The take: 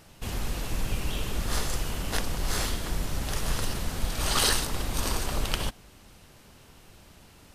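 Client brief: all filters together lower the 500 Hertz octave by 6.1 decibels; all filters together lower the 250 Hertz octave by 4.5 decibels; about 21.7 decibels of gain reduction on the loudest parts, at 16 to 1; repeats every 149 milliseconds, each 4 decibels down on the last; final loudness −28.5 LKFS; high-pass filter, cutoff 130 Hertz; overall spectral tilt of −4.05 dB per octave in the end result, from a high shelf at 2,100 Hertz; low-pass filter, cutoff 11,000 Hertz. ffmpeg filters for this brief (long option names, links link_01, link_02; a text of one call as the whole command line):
ffmpeg -i in.wav -af "highpass=130,lowpass=11000,equalizer=frequency=250:width_type=o:gain=-3.5,equalizer=frequency=500:width_type=o:gain=-6.5,highshelf=frequency=2100:gain=-4.5,acompressor=threshold=-46dB:ratio=16,aecho=1:1:149|298|447|596|745|894|1043|1192|1341:0.631|0.398|0.25|0.158|0.0994|0.0626|0.0394|0.0249|0.0157,volume=19dB" out.wav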